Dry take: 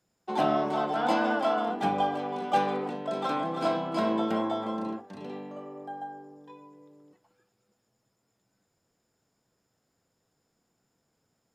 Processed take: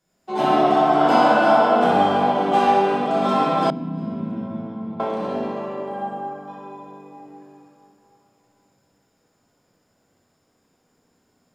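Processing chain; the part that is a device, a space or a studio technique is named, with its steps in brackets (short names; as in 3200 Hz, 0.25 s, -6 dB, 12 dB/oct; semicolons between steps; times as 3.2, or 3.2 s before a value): tunnel (flutter echo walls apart 10.6 m, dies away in 0.66 s; reverb RT60 3.4 s, pre-delay 3 ms, DRR -9 dB); 3.7–5 EQ curve 200 Hz 0 dB, 620 Hz -23 dB, 2300 Hz -22 dB, 8500 Hz -28 dB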